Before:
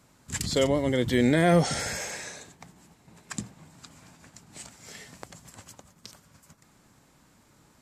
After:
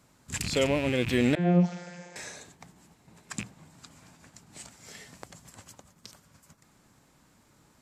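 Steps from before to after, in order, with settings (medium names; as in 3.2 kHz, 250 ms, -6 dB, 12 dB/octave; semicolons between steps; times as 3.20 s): rattle on loud lows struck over -36 dBFS, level -22 dBFS; 1.35–2.16 s: vocoder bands 32, saw 176 Hz; trim -2 dB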